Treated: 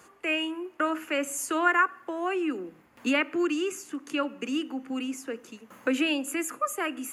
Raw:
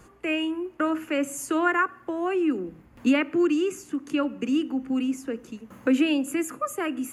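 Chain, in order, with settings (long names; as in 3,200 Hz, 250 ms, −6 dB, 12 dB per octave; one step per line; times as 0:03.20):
high-pass filter 670 Hz 6 dB per octave
level +2 dB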